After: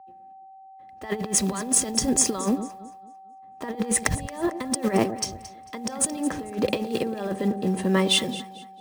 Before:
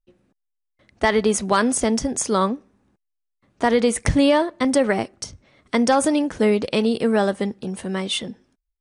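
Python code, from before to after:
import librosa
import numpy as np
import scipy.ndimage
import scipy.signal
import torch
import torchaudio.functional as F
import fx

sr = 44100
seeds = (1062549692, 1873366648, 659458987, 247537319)

p1 = fx.block_float(x, sr, bits=5)
p2 = fx.notch_comb(p1, sr, f0_hz=730.0)
p3 = fx.over_compress(p2, sr, threshold_db=-24.0, ratio=-0.5)
p4 = p3 + 10.0 ** (-37.0 / 20.0) * np.sin(2.0 * np.pi * 770.0 * np.arange(len(p3)) / sr)
p5 = p4 + fx.echo_alternate(p4, sr, ms=112, hz=810.0, feedback_pct=65, wet_db=-9.5, dry=0)
p6 = fx.band_widen(p5, sr, depth_pct=40)
y = F.gain(torch.from_numpy(p6), -1.0).numpy()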